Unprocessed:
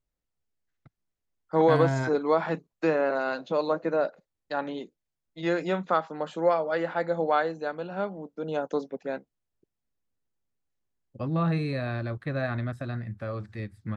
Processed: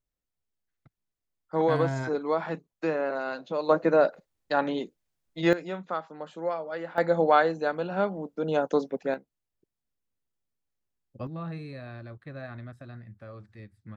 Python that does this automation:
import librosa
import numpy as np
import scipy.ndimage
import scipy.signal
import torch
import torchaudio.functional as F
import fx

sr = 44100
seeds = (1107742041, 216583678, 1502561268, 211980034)

y = fx.gain(x, sr, db=fx.steps((0.0, -3.5), (3.69, 5.0), (5.53, -7.0), (6.98, 4.0), (9.14, -3.0), (11.27, -10.5)))